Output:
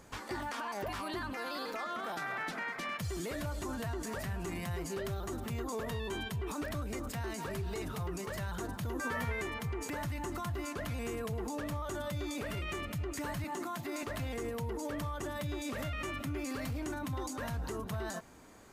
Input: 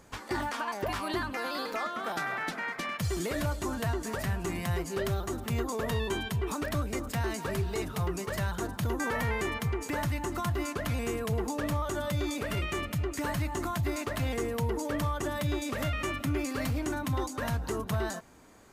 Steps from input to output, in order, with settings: 13.44–14.03 HPF 180 Hz 24 dB/oct; limiter -30.5 dBFS, peak gain reduction 8 dB; 8.94–9.42 doubler 12 ms -2.5 dB

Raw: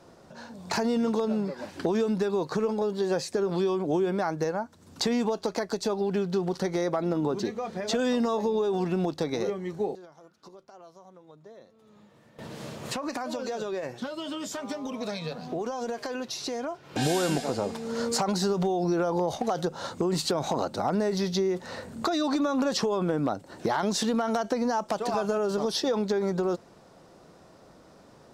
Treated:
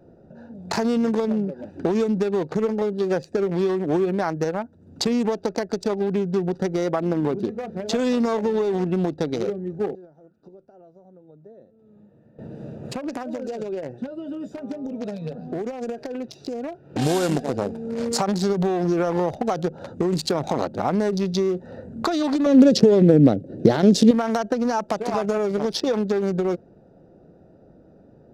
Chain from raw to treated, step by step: Wiener smoothing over 41 samples; 22.46–24.11 graphic EQ 125/250/500/1000/4000 Hz +10/+7/+9/-11/+4 dB; gain +5.5 dB

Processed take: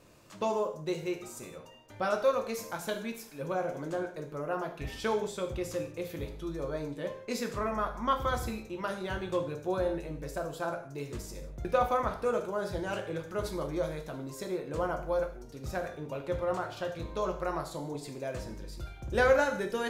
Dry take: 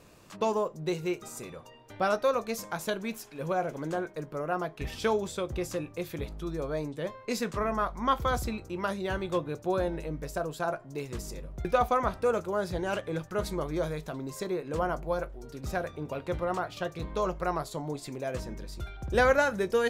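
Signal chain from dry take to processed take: non-linear reverb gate 0.21 s falling, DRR 4.5 dB; gain -4 dB

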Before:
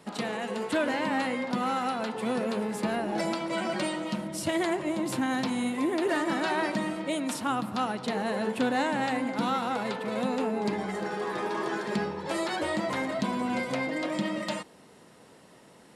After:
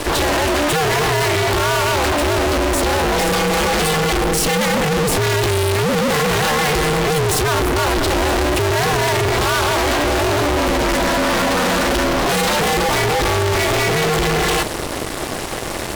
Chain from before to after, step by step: 7.08–8.88 low shelf 160 Hz +10 dB; fuzz box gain 54 dB, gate -56 dBFS; ring modulator 150 Hz

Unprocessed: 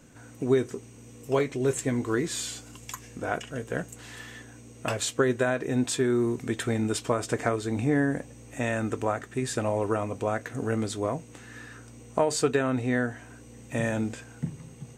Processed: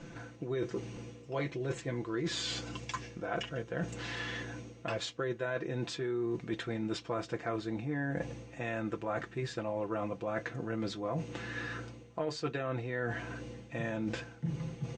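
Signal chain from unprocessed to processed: LPF 5200 Hz 24 dB/oct; comb 5.9 ms, depth 70%; reverse; compressor 5:1, threshold -39 dBFS, peak gain reduction 19 dB; reverse; gain +5 dB

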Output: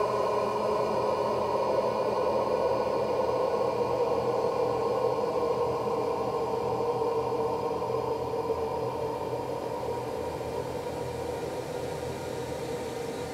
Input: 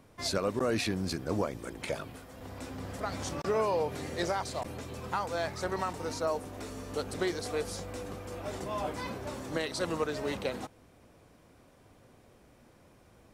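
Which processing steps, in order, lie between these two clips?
non-linear reverb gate 0.19 s rising, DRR 7 dB; Paulstretch 46×, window 0.25 s, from 3.69

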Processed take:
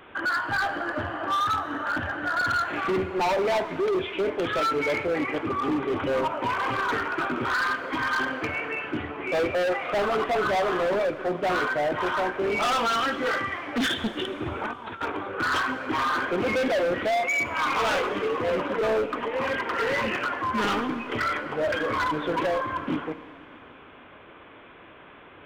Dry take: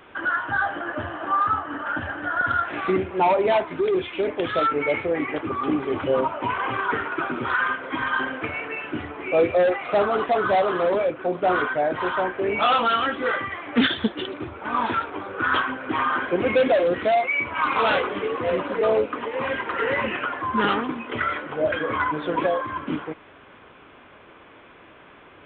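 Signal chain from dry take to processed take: 14.46–15.12 negative-ratio compressor -31 dBFS, ratio -0.5; hard clip -22 dBFS, distortion -9 dB; Schroeder reverb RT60 2.7 s, combs from 32 ms, DRR 14.5 dB

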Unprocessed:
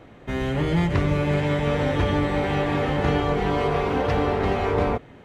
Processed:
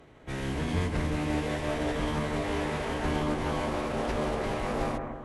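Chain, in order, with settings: high shelf 6100 Hz +8.5 dB; notch 380 Hz, Q 12; in parallel at -11 dB: wrapped overs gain 23.5 dB; on the sum: formant-preserving pitch shift -11.5 st; added harmonics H 2 -31 dB, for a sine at -8.5 dBFS; on a send: analogue delay 0.164 s, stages 2048, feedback 47%, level -5.5 dB; on the sum: gain -7.5 dB

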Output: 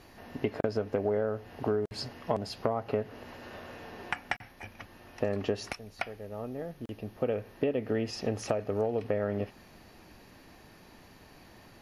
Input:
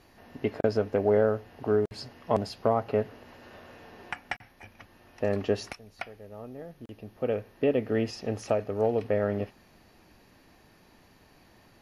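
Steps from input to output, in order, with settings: compressor 6:1, threshold -30 dBFS, peak gain reduction 11.5 dB; gain +4 dB

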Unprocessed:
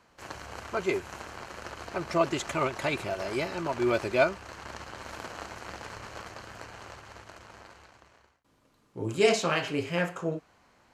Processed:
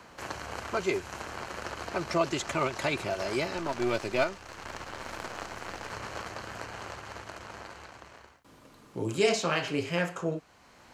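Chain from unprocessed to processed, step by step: 3.57–5.91 half-wave gain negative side -7 dB; dynamic EQ 5400 Hz, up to +4 dB, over -48 dBFS, Q 0.97; three-band squash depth 40%

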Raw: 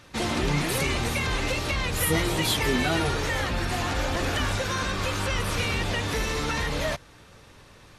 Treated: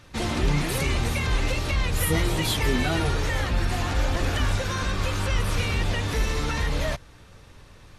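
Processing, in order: low shelf 96 Hz +10.5 dB; gain -1.5 dB

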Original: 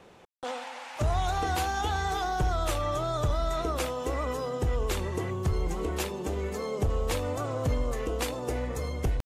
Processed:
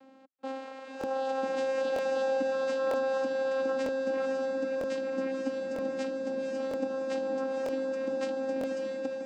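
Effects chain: 5.09–5.61 doubler 12 ms -3.5 dB; vocoder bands 8, saw 266 Hz; diffused feedback echo 0.517 s, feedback 41%, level -4 dB; crackling interface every 0.95 s, samples 1024, repeat, from 0.99; gain -1 dB

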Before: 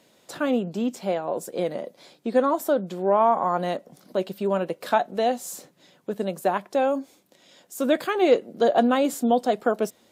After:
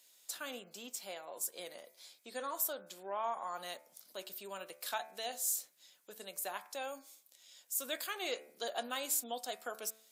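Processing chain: differentiator; de-hum 73.44 Hz, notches 35; gain +1 dB

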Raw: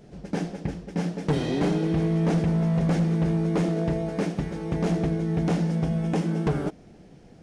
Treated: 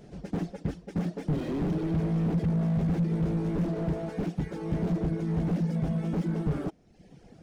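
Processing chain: reverb removal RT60 0.77 s; slew limiter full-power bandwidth 13 Hz

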